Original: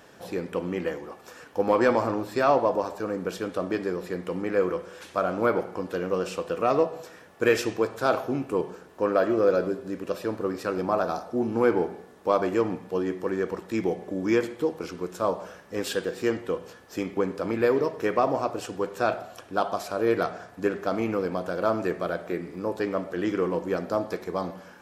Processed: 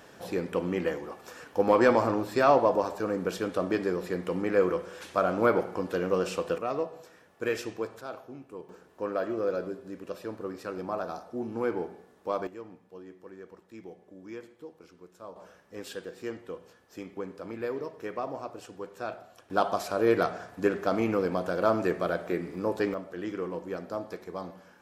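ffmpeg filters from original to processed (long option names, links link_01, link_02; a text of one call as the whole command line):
ffmpeg -i in.wav -af "asetnsamples=nb_out_samples=441:pad=0,asendcmd='6.58 volume volume -8.5dB;8.01 volume volume -16.5dB;8.69 volume volume -8dB;12.47 volume volume -19dB;15.36 volume volume -11dB;19.5 volume volume 0dB;22.94 volume volume -8dB',volume=0dB" out.wav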